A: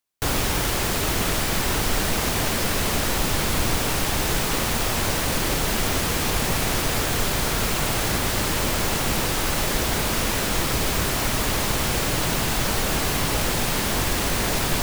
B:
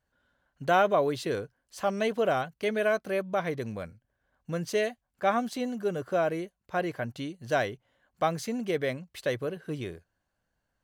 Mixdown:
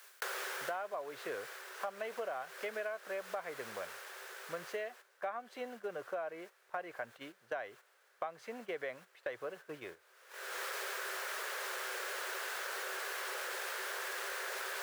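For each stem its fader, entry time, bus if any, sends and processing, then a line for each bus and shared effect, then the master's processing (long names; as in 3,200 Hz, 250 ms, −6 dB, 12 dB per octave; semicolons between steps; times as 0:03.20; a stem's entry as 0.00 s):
0:04.62 −1.5 dB → 0:05.08 −13 dB, 0.00 s, no send, Chebyshev high-pass with heavy ripple 370 Hz, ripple 6 dB; parametric band 1,600 Hz +6.5 dB 0.47 octaves; envelope flattener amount 100%; automatic ducking −21 dB, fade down 0.95 s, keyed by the second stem
0.0 dB, 0.00 s, no send, three-way crossover with the lows and the highs turned down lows −21 dB, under 510 Hz, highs −19 dB, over 2,500 Hz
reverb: not used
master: noise gate −48 dBFS, range −10 dB; low-shelf EQ 64 Hz −10.5 dB; downward compressor 12 to 1, threshold −36 dBFS, peak gain reduction 16.5 dB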